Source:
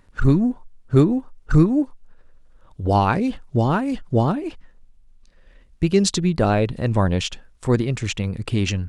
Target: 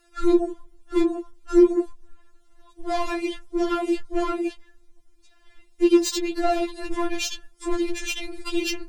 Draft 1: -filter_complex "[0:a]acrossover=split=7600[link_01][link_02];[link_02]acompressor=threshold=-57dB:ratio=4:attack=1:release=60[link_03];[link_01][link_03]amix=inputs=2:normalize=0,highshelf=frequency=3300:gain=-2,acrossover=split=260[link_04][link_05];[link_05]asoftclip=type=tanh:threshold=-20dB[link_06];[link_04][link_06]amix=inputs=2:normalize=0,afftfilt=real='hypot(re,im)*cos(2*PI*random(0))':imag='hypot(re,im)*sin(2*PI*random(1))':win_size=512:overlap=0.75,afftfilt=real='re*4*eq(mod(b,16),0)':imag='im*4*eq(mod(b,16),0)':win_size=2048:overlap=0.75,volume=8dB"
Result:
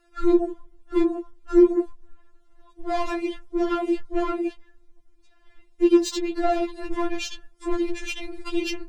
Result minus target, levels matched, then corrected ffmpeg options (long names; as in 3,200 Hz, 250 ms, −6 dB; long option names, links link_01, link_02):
8,000 Hz band −5.5 dB
-filter_complex "[0:a]acrossover=split=7600[link_01][link_02];[link_02]acompressor=threshold=-57dB:ratio=4:attack=1:release=60[link_03];[link_01][link_03]amix=inputs=2:normalize=0,highshelf=frequency=3300:gain=8.5,acrossover=split=260[link_04][link_05];[link_05]asoftclip=type=tanh:threshold=-20dB[link_06];[link_04][link_06]amix=inputs=2:normalize=0,afftfilt=real='hypot(re,im)*cos(2*PI*random(0))':imag='hypot(re,im)*sin(2*PI*random(1))':win_size=512:overlap=0.75,afftfilt=real='re*4*eq(mod(b,16),0)':imag='im*4*eq(mod(b,16),0)':win_size=2048:overlap=0.75,volume=8dB"